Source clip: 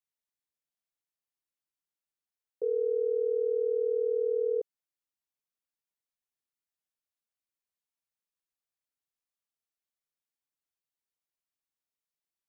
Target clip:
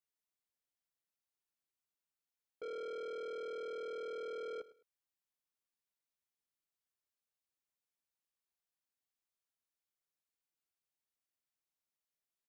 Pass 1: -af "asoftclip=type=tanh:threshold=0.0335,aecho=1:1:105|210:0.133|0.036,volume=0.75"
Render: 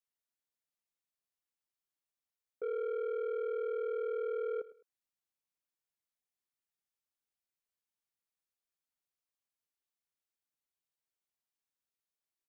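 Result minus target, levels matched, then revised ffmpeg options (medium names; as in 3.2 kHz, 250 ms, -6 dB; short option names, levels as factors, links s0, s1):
saturation: distortion -6 dB
-af "asoftclip=type=tanh:threshold=0.0112,aecho=1:1:105|210:0.133|0.036,volume=0.75"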